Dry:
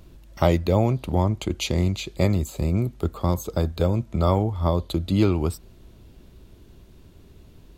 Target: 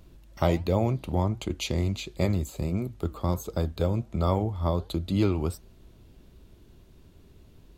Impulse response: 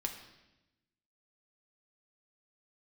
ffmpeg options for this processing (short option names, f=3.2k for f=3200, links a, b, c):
-af "flanger=delay=4.1:depth=4.4:regen=-85:speed=1.4:shape=sinusoidal"